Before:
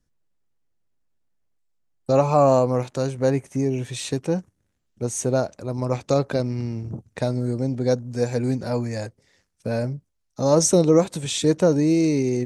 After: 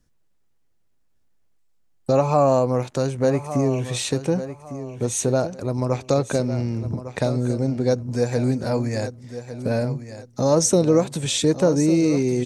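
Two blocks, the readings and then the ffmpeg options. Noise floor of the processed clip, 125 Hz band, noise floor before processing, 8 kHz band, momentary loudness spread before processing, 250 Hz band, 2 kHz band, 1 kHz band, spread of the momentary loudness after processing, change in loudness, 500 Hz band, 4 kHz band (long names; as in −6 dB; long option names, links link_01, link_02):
−62 dBFS, +1.5 dB, −73 dBFS, +1.5 dB, 13 LU, +1.0 dB, +2.0 dB, 0.0 dB, 11 LU, +0.5 dB, +0.5 dB, +2.5 dB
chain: -filter_complex "[0:a]acompressor=threshold=-33dB:ratio=1.5,asplit=2[link_01][link_02];[link_02]aecho=0:1:1154|2308|3462:0.251|0.0678|0.0183[link_03];[link_01][link_03]amix=inputs=2:normalize=0,volume=6.5dB"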